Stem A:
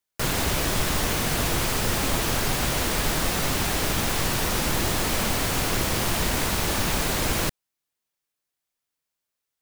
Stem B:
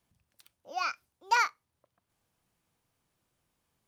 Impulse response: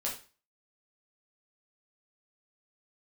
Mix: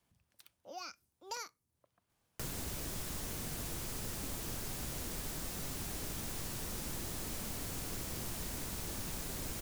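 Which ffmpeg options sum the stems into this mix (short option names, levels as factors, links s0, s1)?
-filter_complex "[0:a]adelay=2200,volume=0.299[s0];[1:a]volume=0.944[s1];[s0][s1]amix=inputs=2:normalize=0,acrossover=split=420|5300[s2][s3][s4];[s2]acompressor=threshold=0.00891:ratio=4[s5];[s3]acompressor=threshold=0.00282:ratio=4[s6];[s4]acompressor=threshold=0.00794:ratio=4[s7];[s5][s6][s7]amix=inputs=3:normalize=0"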